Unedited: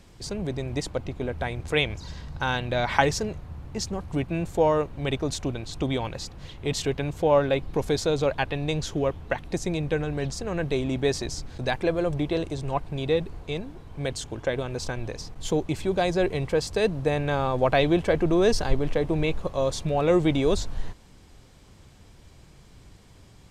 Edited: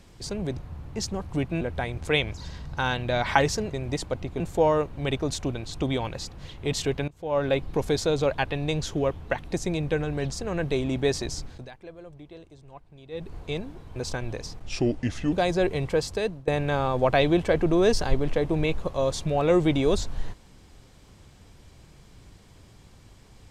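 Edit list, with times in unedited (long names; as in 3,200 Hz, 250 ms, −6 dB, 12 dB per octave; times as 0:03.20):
0:00.57–0:01.24: swap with 0:03.36–0:04.40
0:07.08–0:07.48: fade in quadratic, from −19.5 dB
0:11.44–0:13.36: duck −19 dB, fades 0.25 s
0:13.96–0:14.71: remove
0:15.37–0:15.92: play speed 78%
0:16.47–0:17.07: fade out equal-power, to −23 dB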